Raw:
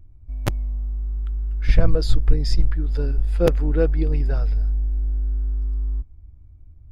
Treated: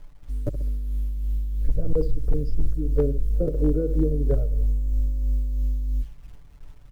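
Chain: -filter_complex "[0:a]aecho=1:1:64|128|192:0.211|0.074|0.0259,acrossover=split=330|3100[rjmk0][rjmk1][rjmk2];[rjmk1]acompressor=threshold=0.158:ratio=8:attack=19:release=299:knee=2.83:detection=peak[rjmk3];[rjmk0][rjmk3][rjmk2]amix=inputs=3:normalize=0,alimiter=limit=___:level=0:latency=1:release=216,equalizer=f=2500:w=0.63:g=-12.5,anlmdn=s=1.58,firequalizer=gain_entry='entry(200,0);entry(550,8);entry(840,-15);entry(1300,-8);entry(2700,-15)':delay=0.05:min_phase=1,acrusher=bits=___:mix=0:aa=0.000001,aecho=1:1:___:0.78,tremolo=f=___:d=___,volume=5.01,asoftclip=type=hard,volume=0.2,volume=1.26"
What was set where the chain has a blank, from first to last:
0.188, 9, 6.9, 3, 0.39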